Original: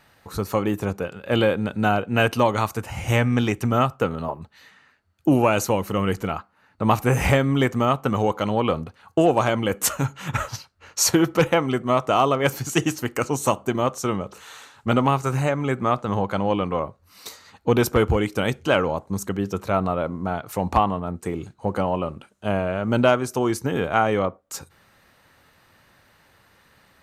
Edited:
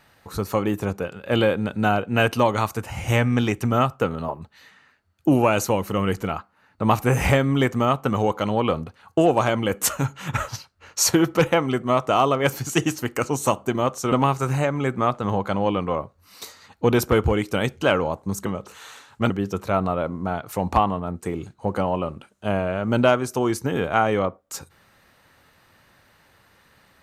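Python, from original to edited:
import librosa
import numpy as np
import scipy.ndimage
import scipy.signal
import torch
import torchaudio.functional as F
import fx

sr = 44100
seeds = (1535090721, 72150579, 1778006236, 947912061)

y = fx.edit(x, sr, fx.move(start_s=14.12, length_s=0.84, to_s=19.3), tone=tone)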